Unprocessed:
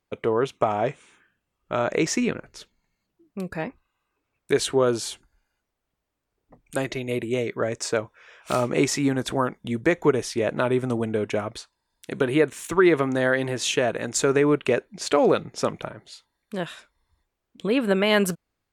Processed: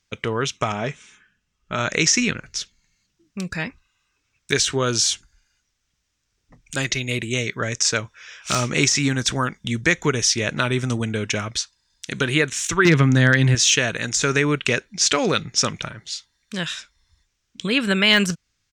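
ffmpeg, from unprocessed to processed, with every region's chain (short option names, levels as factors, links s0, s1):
-filter_complex "[0:a]asettb=1/sr,asplit=3[s0][s1][s2];[s0]atrim=end=0.724[s3];[s1]atrim=start=0.72:end=1.79,asetpts=PTS-STARTPTS,afade=t=in:d=0.004:c=qsin,afade=t=out:st=1.066:d=0.004:c=qsin,highshelf=f=2200:g=-7.5,aecho=1:1:4.7:0.33,atrim=end_sample=47187[s4];[s2]atrim=start=1.786[s5];[s3][s4]acrossfade=d=0.004:c1=hsin:c2=qsin[s6];[s6][s5]acrossfade=d=0.004:c1=qsin:c2=hsin,asettb=1/sr,asplit=3[s7][s8][s9];[s7]atrim=end=12.854[s10];[s8]atrim=start=12.85:end=13.55,asetpts=PTS-STARTPTS,afade=t=in:d=0.004:c=qsin,afade=t=out:st=0.696:d=0.004:c=qsin,bass=f=250:g=14,treble=f=4000:g=-5,asoftclip=type=hard:threshold=0.376,highpass=110[s11];[s9]atrim=start=13.546[s12];[s10][s11]acrossfade=d=0.004:c1=hsin:c2=qsin[s13];[s13][s12]acrossfade=d=0.004:c1=qsin:c2=hsin,equalizer=f=4400:t=o:w=0.21:g=-4,deesser=0.6,firequalizer=gain_entry='entry(110,0);entry(340,-10);entry(700,-12);entry(1500,0);entry(5800,13);entry(11000,-7)':delay=0.05:min_phase=1,volume=2.24"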